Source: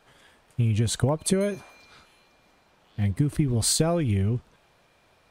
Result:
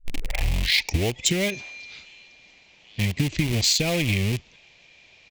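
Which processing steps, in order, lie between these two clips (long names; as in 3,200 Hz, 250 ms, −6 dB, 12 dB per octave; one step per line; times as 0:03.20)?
turntable start at the beginning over 1.45 s
downsampling to 16,000 Hz
in parallel at −9 dB: bit reduction 4 bits
on the sum: high shelf with overshoot 1,800 Hz +9 dB, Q 3
downward compressor 2.5 to 1, threshold −20 dBFS, peak gain reduction 7.5 dB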